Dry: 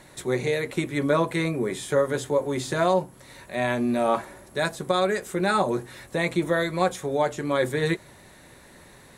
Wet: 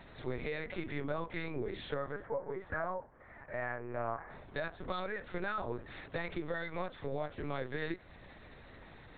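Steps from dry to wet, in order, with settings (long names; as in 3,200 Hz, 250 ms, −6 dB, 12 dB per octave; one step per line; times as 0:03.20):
0:02.12–0:04.30: Chebyshev band-pass filter 380–1,900 Hz, order 3
harmonic and percussive parts rebalanced harmonic −16 dB
dynamic equaliser 1,400 Hz, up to +5 dB, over −44 dBFS, Q 1.2
harmonic and percussive parts rebalanced percussive −18 dB
downward compressor 6 to 1, threshold −42 dBFS, peak gain reduction 13.5 dB
linear-prediction vocoder at 8 kHz pitch kept
level +7.5 dB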